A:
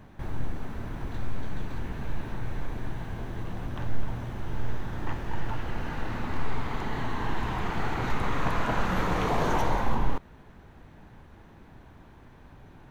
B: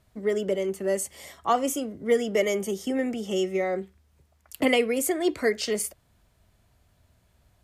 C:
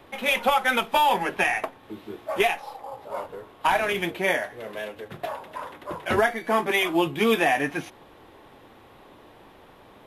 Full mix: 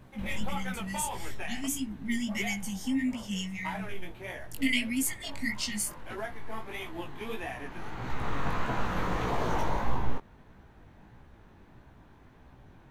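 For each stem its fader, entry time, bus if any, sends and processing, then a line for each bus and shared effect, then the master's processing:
−1.0 dB, 0.00 s, no send, automatic ducking −11 dB, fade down 1.85 s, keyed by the second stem
+1.5 dB, 0.00 s, no send, brick-wall band-stop 280–1,800 Hz; mains hum 50 Hz, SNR 29 dB
−14.0 dB, 0.00 s, no send, no processing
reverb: not used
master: chorus effect 1.6 Hz, delay 15 ms, depth 6.8 ms

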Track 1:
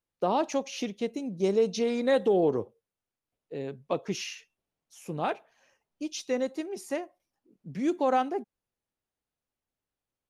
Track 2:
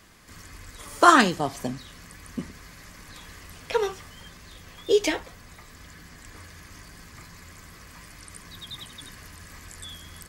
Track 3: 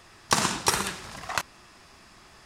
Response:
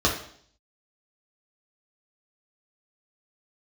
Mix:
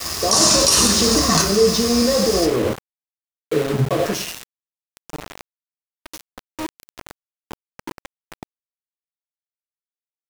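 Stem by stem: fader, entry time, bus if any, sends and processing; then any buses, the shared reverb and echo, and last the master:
0:04.00 −4 dB → 0:04.61 −15 dB, 0.00 s, send −8.5 dB, envelope flattener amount 100%
−8.5 dB, 0.20 s, no send, resonators tuned to a chord A#2 minor, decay 0.35 s
+0.5 dB, 0.00 s, send −9.5 dB, flat-topped bell 7,300 Hz +14.5 dB; envelope flattener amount 50%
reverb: on, RT60 0.60 s, pre-delay 3 ms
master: flanger 0.29 Hz, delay 2.5 ms, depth 1.7 ms, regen −79%; centre clipping without the shift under −22.5 dBFS; brickwall limiter −4 dBFS, peak gain reduction 9 dB

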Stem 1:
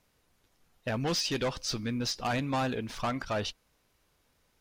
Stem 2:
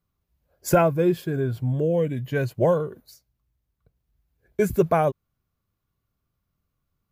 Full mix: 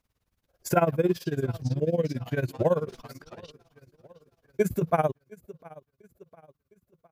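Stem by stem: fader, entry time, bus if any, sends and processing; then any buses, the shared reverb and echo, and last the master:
−6.5 dB, 0.00 s, no send, echo send −21.5 dB, brickwall limiter −30.5 dBFS, peak gain reduction 8 dB; mains hum 50 Hz, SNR 31 dB
0.0 dB, 0.00 s, no send, echo send −22 dB, high-pass filter 61 Hz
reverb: not used
echo: repeating echo 707 ms, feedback 42%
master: amplitude tremolo 18 Hz, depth 89%

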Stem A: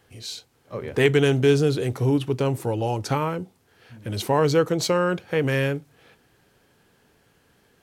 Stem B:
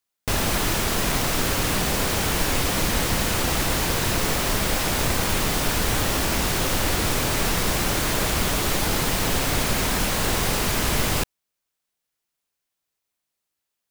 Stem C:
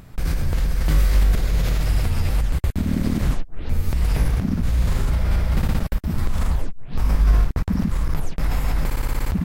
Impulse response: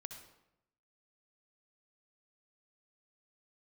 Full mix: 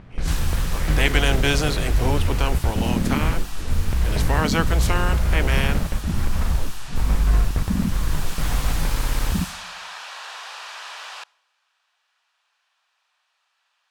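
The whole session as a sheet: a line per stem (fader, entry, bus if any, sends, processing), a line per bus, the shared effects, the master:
−3.5 dB, 0.00 s, no send, ceiling on every frequency bin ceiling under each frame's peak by 20 dB
−8.0 dB, 0.00 s, send −16 dB, high-pass filter 820 Hz 24 dB per octave; notch filter 2,100 Hz, Q 8.4; envelope flattener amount 50%; automatic ducking −7 dB, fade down 1.80 s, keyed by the first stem
−1.0 dB, 0.00 s, send −11.5 dB, low-pass filter 3,200 Hz; hum removal 46.66 Hz, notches 31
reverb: on, RT60 0.85 s, pre-delay 58 ms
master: low-pass that shuts in the quiet parts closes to 2,900 Hz, open at −17 dBFS

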